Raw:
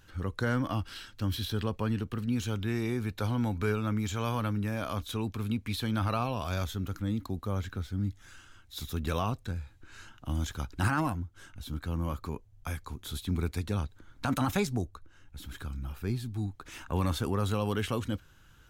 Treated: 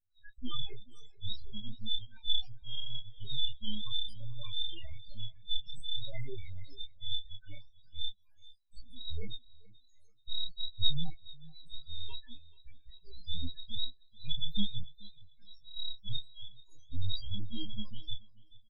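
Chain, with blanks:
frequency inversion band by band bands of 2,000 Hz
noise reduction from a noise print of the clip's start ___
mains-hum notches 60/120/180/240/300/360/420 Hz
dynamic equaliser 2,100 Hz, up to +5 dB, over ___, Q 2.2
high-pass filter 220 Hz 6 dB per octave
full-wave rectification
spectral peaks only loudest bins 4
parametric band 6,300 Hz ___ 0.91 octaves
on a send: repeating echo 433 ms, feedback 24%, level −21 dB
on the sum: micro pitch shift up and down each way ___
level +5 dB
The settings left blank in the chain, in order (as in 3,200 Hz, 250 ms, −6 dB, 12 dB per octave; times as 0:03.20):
29 dB, −45 dBFS, +5.5 dB, 16 cents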